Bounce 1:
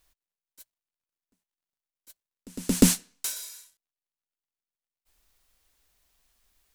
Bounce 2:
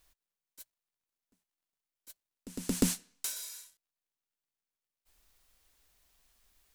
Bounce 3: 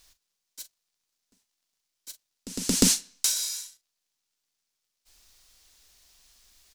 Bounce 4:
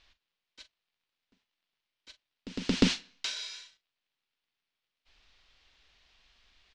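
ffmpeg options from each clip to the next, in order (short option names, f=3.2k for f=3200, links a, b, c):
-af "acompressor=threshold=-41dB:ratio=1.5"
-filter_complex "[0:a]equalizer=f=5.3k:w=0.75:g=10.5,asplit=2[a][b];[b]adelay=42,volume=-13dB[c];[a][c]amix=inputs=2:normalize=0,volume=5dB"
-af "lowpass=f=3.1k:w=0.5412,lowpass=f=3.1k:w=1.3066,crystalizer=i=3.5:c=0,volume=-1.5dB"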